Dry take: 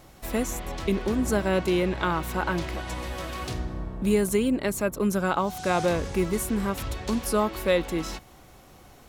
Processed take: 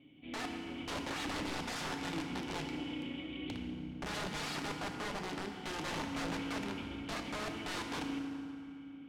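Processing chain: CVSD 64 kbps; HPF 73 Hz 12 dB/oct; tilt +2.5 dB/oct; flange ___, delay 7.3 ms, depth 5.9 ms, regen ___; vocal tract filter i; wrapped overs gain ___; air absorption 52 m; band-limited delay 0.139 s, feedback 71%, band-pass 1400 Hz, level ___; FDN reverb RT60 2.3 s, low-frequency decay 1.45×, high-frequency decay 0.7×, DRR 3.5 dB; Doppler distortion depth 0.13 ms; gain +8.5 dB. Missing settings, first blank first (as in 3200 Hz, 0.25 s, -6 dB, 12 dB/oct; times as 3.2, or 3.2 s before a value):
0.37 Hz, -36%, 43 dB, -16 dB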